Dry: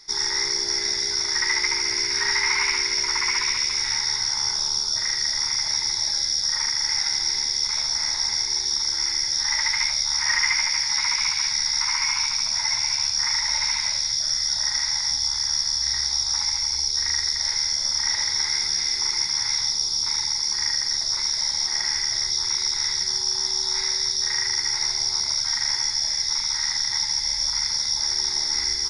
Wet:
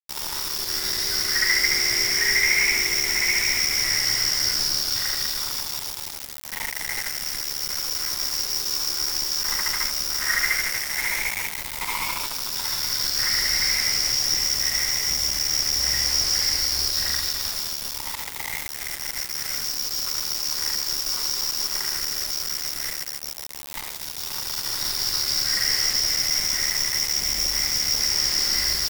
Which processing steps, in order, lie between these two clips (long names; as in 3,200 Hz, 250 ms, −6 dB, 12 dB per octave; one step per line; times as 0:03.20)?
running median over 5 samples
all-pass phaser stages 6, 0.083 Hz, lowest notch 190–1,100 Hz
bit reduction 5 bits
level +3.5 dB